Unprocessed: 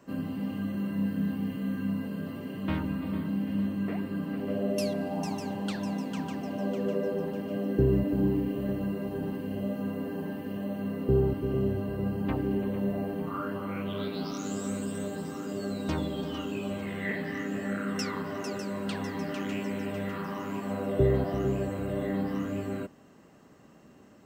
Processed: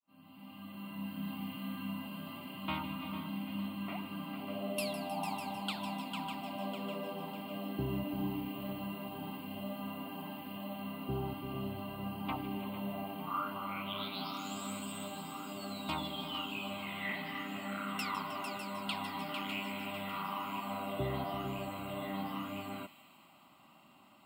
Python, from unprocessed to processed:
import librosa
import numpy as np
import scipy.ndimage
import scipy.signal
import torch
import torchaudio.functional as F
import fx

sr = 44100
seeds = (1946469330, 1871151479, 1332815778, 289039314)

y = fx.fade_in_head(x, sr, length_s=1.41)
y = fx.highpass(y, sr, hz=760.0, slope=6)
y = fx.fixed_phaser(y, sr, hz=1700.0, stages=6)
y = fx.echo_wet_highpass(y, sr, ms=156, feedback_pct=69, hz=2500.0, wet_db=-11.0)
y = y * 10.0 ** (4.5 / 20.0)